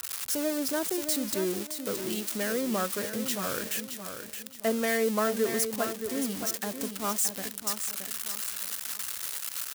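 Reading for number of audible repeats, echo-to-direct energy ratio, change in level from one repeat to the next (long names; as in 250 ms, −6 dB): 3, −7.5 dB, −9.5 dB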